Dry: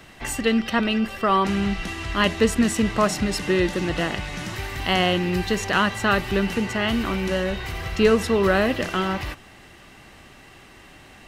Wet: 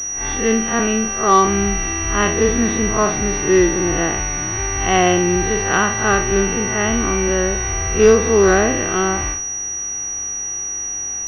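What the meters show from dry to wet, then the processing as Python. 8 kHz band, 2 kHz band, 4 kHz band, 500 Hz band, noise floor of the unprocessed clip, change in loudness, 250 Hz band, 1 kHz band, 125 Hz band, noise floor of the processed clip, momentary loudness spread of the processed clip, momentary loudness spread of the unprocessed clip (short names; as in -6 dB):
+20.0 dB, +4.5 dB, -2.0 dB, +7.0 dB, -48 dBFS, +5.5 dB, +3.5 dB, +6.0 dB, +4.5 dB, -25 dBFS, 9 LU, 10 LU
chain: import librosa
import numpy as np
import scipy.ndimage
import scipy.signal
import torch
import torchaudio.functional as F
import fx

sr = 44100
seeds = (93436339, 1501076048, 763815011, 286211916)

y = fx.spec_blur(x, sr, span_ms=101.0)
y = y + 0.4 * np.pad(y, (int(2.6 * sr / 1000.0), 0))[:len(y)]
y = fx.pwm(y, sr, carrier_hz=5800.0)
y = y * 10.0 ** (7.0 / 20.0)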